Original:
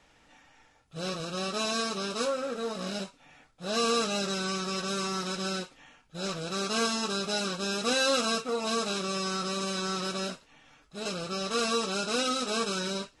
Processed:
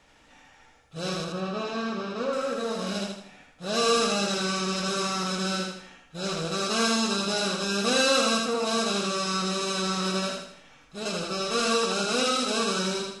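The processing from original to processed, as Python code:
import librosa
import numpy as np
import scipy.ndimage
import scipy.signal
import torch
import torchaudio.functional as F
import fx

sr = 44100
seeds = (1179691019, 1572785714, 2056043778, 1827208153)

p1 = fx.spacing_loss(x, sr, db_at_10k=28, at=(1.24, 2.33))
p2 = p1 + fx.echo_feedback(p1, sr, ms=80, feedback_pct=42, wet_db=-3.0, dry=0)
y = p2 * librosa.db_to_amplitude(2.0)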